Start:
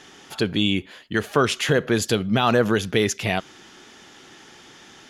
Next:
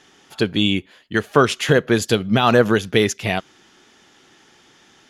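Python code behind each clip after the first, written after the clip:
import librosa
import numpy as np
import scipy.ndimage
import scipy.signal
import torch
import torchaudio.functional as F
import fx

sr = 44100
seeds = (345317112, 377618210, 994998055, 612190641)

y = fx.upward_expand(x, sr, threshold_db=-37.0, expansion=1.5)
y = F.gain(torch.from_numpy(y), 5.5).numpy()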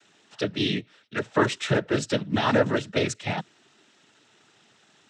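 y = fx.noise_vocoder(x, sr, seeds[0], bands=12)
y = F.gain(torch.from_numpy(y), -7.0).numpy()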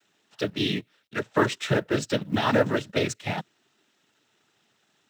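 y = fx.law_mismatch(x, sr, coded='A')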